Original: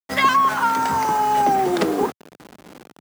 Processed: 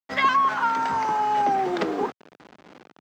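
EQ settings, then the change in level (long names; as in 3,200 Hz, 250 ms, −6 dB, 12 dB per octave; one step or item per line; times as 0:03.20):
high-frequency loss of the air 180 metres
spectral tilt +2 dB per octave
parametric band 4,000 Hz −2.5 dB 1.8 octaves
−2.5 dB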